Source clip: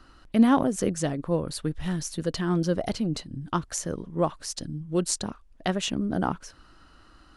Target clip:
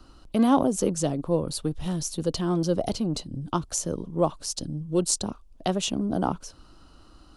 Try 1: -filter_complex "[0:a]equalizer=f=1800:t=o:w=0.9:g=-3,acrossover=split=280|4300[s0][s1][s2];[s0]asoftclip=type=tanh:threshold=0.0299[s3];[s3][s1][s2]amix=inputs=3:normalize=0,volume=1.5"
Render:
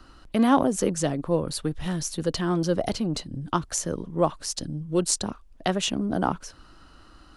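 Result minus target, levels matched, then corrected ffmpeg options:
2 kHz band +6.5 dB
-filter_complex "[0:a]equalizer=f=1800:t=o:w=0.9:g=-13,acrossover=split=280|4300[s0][s1][s2];[s0]asoftclip=type=tanh:threshold=0.0299[s3];[s3][s1][s2]amix=inputs=3:normalize=0,volume=1.5"

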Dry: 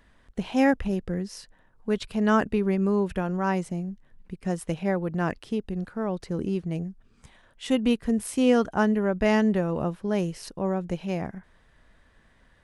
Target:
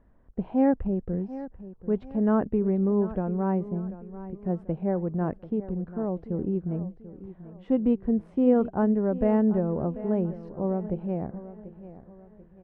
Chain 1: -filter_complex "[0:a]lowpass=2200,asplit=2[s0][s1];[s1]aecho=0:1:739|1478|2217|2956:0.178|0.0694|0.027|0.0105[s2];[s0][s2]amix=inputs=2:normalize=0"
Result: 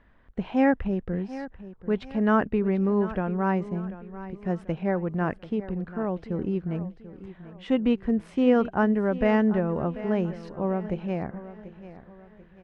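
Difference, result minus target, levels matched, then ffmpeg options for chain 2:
2 kHz band +12.0 dB
-filter_complex "[0:a]lowpass=750,asplit=2[s0][s1];[s1]aecho=0:1:739|1478|2217|2956:0.178|0.0694|0.027|0.0105[s2];[s0][s2]amix=inputs=2:normalize=0"

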